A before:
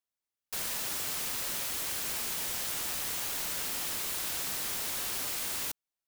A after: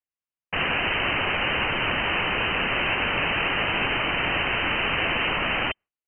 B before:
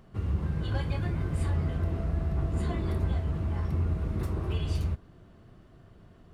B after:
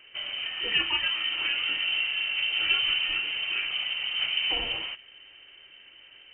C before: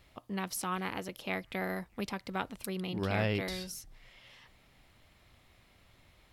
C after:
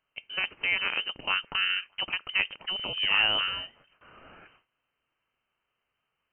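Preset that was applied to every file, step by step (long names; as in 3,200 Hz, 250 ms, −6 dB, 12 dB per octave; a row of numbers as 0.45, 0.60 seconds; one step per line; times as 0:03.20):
Butterworth high-pass 280 Hz 72 dB per octave
noise gate with hold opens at −53 dBFS
dynamic equaliser 710 Hz, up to +6 dB, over −50 dBFS, Q 1.1
in parallel at −11 dB: soft clipping −30 dBFS
on the sum: voice inversion scrambler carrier 3,400 Hz
normalise the peak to −12 dBFS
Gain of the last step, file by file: +15.0, +8.0, +4.0 decibels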